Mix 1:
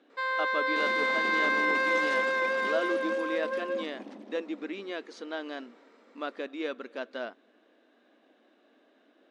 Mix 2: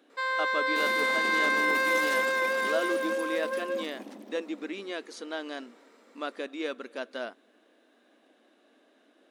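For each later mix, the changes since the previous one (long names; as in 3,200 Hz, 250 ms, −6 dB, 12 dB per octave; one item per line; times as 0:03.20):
master: remove high-frequency loss of the air 110 metres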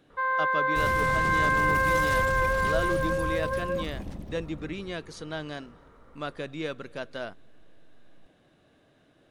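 first sound: add low-pass with resonance 1,300 Hz, resonance Q 1.8
master: remove linear-phase brick-wall high-pass 210 Hz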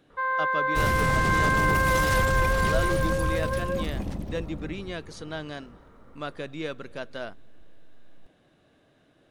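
second sound +6.0 dB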